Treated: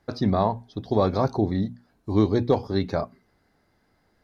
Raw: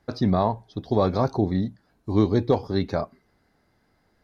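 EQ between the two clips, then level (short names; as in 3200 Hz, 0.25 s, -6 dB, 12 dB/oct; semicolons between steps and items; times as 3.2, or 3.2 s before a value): notches 60/120/180/240 Hz; 0.0 dB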